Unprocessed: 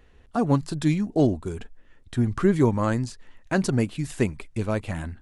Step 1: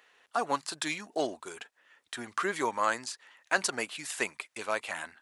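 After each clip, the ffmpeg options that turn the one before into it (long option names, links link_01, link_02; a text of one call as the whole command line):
ffmpeg -i in.wav -af "highpass=920,volume=3.5dB" out.wav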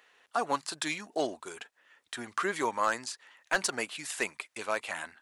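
ffmpeg -i in.wav -af "aeval=exprs='clip(val(0),-1,0.106)':channel_layout=same" out.wav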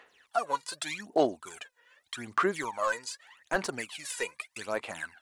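ffmpeg -i in.wav -filter_complex "[0:a]asplit=2[link_01][link_02];[link_02]acompressor=threshold=-39dB:ratio=6,volume=-2dB[link_03];[link_01][link_03]amix=inputs=2:normalize=0,aphaser=in_gain=1:out_gain=1:delay=2.1:decay=0.75:speed=0.83:type=sinusoidal,volume=-7dB" out.wav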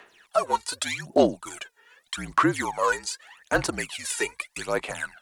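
ffmpeg -i in.wav -af "highshelf=frequency=9300:gain=4.5,afreqshift=-54,volume=6dB" -ar 48000 -c:a libopus -b:a 256k out.opus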